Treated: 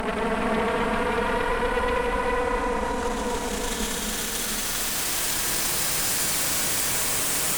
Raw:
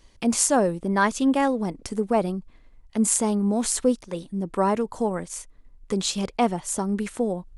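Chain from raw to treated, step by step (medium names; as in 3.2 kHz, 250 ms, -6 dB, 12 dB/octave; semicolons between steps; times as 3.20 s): comb filter that takes the minimum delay 6.2 ms; compression, threshold -29 dBFS, peak gain reduction 13 dB; Paulstretch 47×, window 0.05 s, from 3.56 s; Chebyshev shaper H 8 -7 dB, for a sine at -18.5 dBFS; reverberation RT60 3.6 s, pre-delay 134 ms, DRR 0 dB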